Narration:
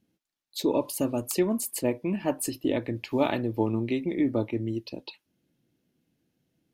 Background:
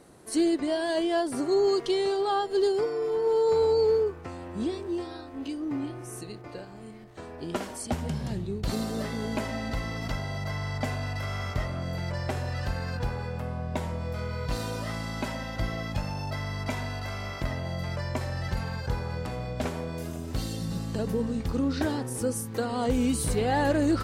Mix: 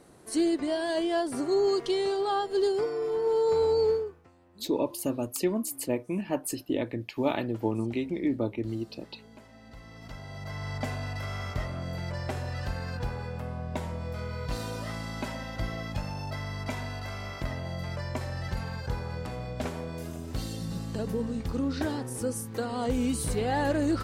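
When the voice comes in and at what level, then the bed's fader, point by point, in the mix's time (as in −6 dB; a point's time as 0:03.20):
4.05 s, −2.5 dB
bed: 0:03.90 −1.5 dB
0:04.32 −21 dB
0:09.50 −21 dB
0:10.70 −2.5 dB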